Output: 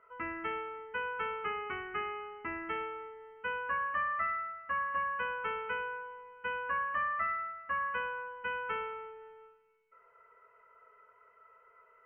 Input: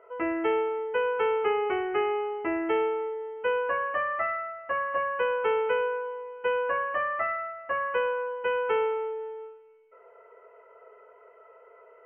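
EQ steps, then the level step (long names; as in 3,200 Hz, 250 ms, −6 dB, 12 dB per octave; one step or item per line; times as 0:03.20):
flat-topped bell 510 Hz −16 dB
high-shelf EQ 2,200 Hz −9.5 dB
0.0 dB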